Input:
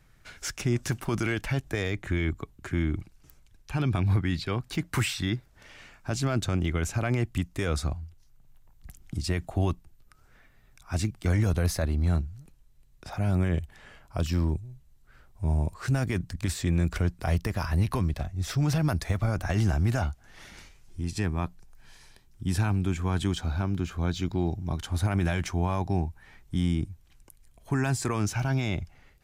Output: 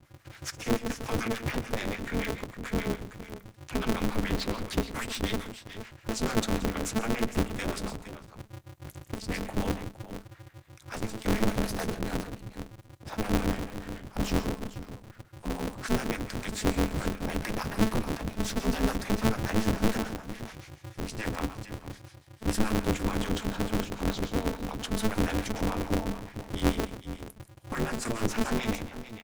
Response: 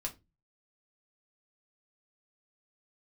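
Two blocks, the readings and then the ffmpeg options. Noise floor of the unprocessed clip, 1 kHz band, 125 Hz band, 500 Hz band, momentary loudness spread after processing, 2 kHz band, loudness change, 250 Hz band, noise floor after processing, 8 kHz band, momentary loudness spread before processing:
−59 dBFS, +1.5 dB, −8.5 dB, +1.5 dB, 15 LU, −0.5 dB, −3.0 dB, +0.5 dB, −55 dBFS, 0.0 dB, 10 LU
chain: -filter_complex "[0:a]acrossover=split=330[link_01][link_02];[link_02]acompressor=threshold=-31dB:ratio=6[link_03];[link_01][link_03]amix=inputs=2:normalize=0,aecho=1:1:101|132|176|464:0.266|0.15|0.178|0.251,acrossover=split=530[link_04][link_05];[link_04]aeval=exprs='val(0)*(1-1/2+1/2*cos(2*PI*6.9*n/s))':channel_layout=same[link_06];[link_05]aeval=exprs='val(0)*(1-1/2-1/2*cos(2*PI*6.9*n/s))':channel_layout=same[link_07];[link_06][link_07]amix=inputs=2:normalize=0,asplit=2[link_08][link_09];[1:a]atrim=start_sample=2205,asetrate=79380,aresample=44100[link_10];[link_09][link_10]afir=irnorm=-1:irlink=0,volume=-1dB[link_11];[link_08][link_11]amix=inputs=2:normalize=0,aeval=exprs='val(0)*sgn(sin(2*PI*110*n/s))':channel_layout=same"

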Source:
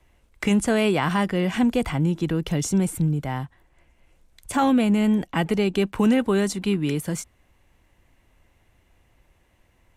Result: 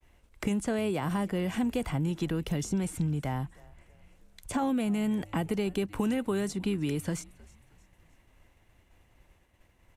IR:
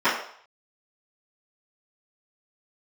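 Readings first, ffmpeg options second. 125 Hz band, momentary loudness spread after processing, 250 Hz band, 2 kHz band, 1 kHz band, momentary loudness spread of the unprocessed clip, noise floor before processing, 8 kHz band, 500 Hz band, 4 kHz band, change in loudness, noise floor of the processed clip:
−7.0 dB, 7 LU, −8.5 dB, −10.5 dB, −9.5 dB, 9 LU, −63 dBFS, −8.5 dB, −8.5 dB, −9.5 dB, −8.5 dB, −65 dBFS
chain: -filter_complex "[0:a]agate=range=-33dB:threshold=-57dB:ratio=3:detection=peak,acrossover=split=840|7800[link_01][link_02][link_03];[link_01]acompressor=threshold=-28dB:ratio=4[link_04];[link_02]acompressor=threshold=-42dB:ratio=4[link_05];[link_03]acompressor=threshold=-50dB:ratio=4[link_06];[link_04][link_05][link_06]amix=inputs=3:normalize=0,asplit=2[link_07][link_08];[link_08]asplit=3[link_09][link_10][link_11];[link_09]adelay=314,afreqshift=-110,volume=-22.5dB[link_12];[link_10]adelay=628,afreqshift=-220,volume=-29.6dB[link_13];[link_11]adelay=942,afreqshift=-330,volume=-36.8dB[link_14];[link_12][link_13][link_14]amix=inputs=3:normalize=0[link_15];[link_07][link_15]amix=inputs=2:normalize=0"

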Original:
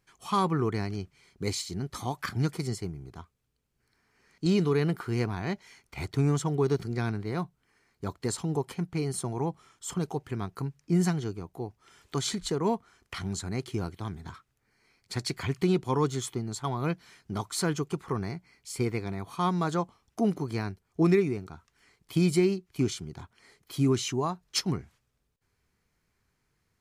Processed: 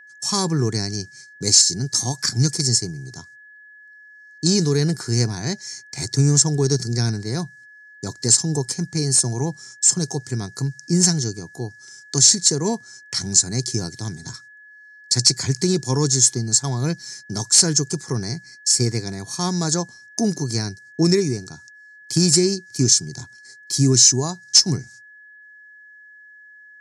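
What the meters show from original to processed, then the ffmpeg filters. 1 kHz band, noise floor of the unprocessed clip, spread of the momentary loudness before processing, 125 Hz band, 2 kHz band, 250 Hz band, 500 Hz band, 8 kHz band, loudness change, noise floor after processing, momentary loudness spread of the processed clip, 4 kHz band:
0.0 dB, −76 dBFS, 13 LU, +8.5 dB, +6.5 dB, +6.0 dB, +4.5 dB, +23.5 dB, +12.0 dB, −47 dBFS, 16 LU, +18.0 dB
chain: -af "agate=range=-25dB:threshold=-56dB:ratio=16:detection=peak,lowshelf=frequency=330:gain=10.5,aexciter=amount=14.1:drive=8.1:freq=4700,asoftclip=type=tanh:threshold=-3dB,highpass=frequency=120:width=0.5412,highpass=frequency=120:width=1.3066,equalizer=frequency=120:width_type=q:width=4:gain=5,equalizer=frequency=190:width_type=q:width=4:gain=-4,equalizer=frequency=1200:width_type=q:width=4:gain=-6,equalizer=frequency=1700:width_type=q:width=4:gain=5,equalizer=frequency=5300:width_type=q:width=4:gain=5,lowpass=frequency=7500:width=0.5412,lowpass=frequency=7500:width=1.3066,aeval=exprs='val(0)+0.00631*sin(2*PI*1700*n/s)':channel_layout=same,alimiter=level_in=1.5dB:limit=-1dB:release=50:level=0:latency=1,volume=-1dB"

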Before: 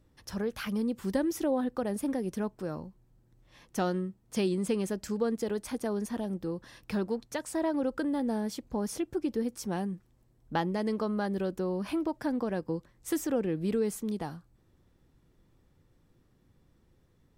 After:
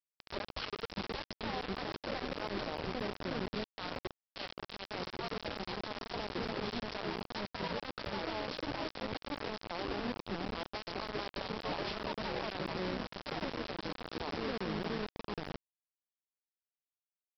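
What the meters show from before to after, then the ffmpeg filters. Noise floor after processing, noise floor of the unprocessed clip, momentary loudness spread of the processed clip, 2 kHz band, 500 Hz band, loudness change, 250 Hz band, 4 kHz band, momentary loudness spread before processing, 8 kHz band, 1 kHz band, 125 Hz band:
below −85 dBFS, −67 dBFS, 5 LU, +2.0 dB, −7.5 dB, −7.0 dB, −11.0 dB, +5.5 dB, 8 LU, −18.5 dB, −1.0 dB, −6.0 dB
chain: -filter_complex "[0:a]acompressor=threshold=-35dB:ratio=5,asplit=2[link_01][link_02];[link_02]aecho=0:1:634|1268|1902:0.224|0.0716|0.0229[link_03];[link_01][link_03]amix=inputs=2:normalize=0,agate=range=-33dB:threshold=-58dB:ratio=3:detection=peak,equalizer=frequency=1800:width=1.5:gain=-14.5,asplit=2[link_04][link_05];[link_05]adelay=1166,volume=-10dB,highshelf=frequency=4000:gain=-26.2[link_06];[link_04][link_06]amix=inputs=2:normalize=0,afftfilt=real='re*lt(hypot(re,im),0.0501)':imag='im*lt(hypot(re,im),0.0501)':win_size=1024:overlap=0.75,alimiter=level_in=17dB:limit=-24dB:level=0:latency=1:release=101,volume=-17dB,aresample=11025,acrusher=bits=7:mix=0:aa=0.000001,aresample=44100,volume=11dB"

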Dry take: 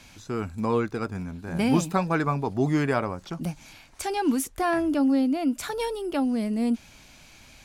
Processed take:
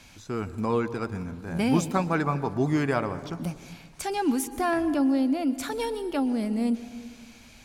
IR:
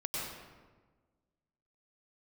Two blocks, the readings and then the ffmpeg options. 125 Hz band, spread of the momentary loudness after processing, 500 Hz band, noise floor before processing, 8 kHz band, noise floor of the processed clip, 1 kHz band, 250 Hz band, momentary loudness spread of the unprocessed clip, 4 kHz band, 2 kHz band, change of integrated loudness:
−1.0 dB, 12 LU, −1.0 dB, −52 dBFS, −1.0 dB, −51 dBFS, −1.0 dB, −1.0 dB, 11 LU, −1.0 dB, −1.0 dB, −1.0 dB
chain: -filter_complex "[0:a]asplit=2[link_01][link_02];[1:a]atrim=start_sample=2205,asetrate=34839,aresample=44100[link_03];[link_02][link_03]afir=irnorm=-1:irlink=0,volume=-17.5dB[link_04];[link_01][link_04]amix=inputs=2:normalize=0,volume=-2dB"

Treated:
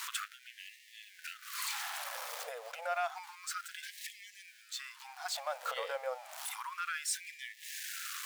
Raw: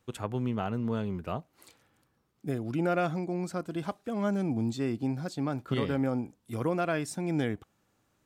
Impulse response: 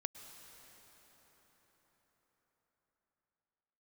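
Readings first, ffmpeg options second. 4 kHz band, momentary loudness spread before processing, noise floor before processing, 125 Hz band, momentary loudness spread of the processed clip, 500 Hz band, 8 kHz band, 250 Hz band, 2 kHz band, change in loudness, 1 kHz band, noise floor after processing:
+5.5 dB, 7 LU, −73 dBFS, below −40 dB, 13 LU, −11.0 dB, +8.5 dB, below −40 dB, +0.5 dB, −7.5 dB, −3.0 dB, −60 dBFS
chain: -af "aeval=exprs='val(0)+0.5*0.0075*sgn(val(0))':channel_layout=same,acompressor=threshold=-37dB:ratio=12,afftfilt=real='re*gte(b*sr/1024,450*pow(1700/450,0.5+0.5*sin(2*PI*0.3*pts/sr)))':imag='im*gte(b*sr/1024,450*pow(1700/450,0.5+0.5*sin(2*PI*0.3*pts/sr)))':win_size=1024:overlap=0.75,volume=10dB"

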